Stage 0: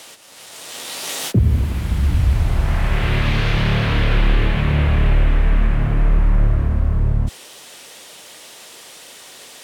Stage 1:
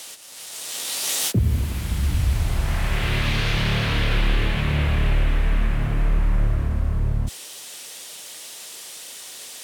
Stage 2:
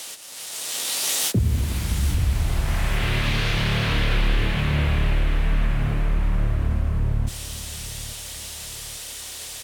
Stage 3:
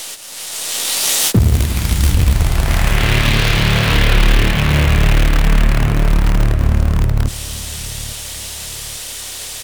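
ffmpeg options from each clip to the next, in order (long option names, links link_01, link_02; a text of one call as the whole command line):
ffmpeg -i in.wav -af "highshelf=frequency=3200:gain=10.5,volume=-5dB" out.wav
ffmpeg -i in.wav -af "acompressor=threshold=-25dB:ratio=1.5,aecho=1:1:838|1676|2514|3352:0.178|0.0729|0.0299|0.0123,volume=2.5dB" out.wav
ffmpeg -i in.wav -filter_complex "[0:a]aeval=exprs='0.355*(cos(1*acos(clip(val(0)/0.355,-1,1)))-cos(1*PI/2))+0.0112*(cos(4*acos(clip(val(0)/0.355,-1,1)))-cos(4*PI/2))':channel_layout=same,asplit=2[link_01][link_02];[link_02]acrusher=bits=4:dc=4:mix=0:aa=0.000001,volume=-9dB[link_03];[link_01][link_03]amix=inputs=2:normalize=0,volume=6dB" out.wav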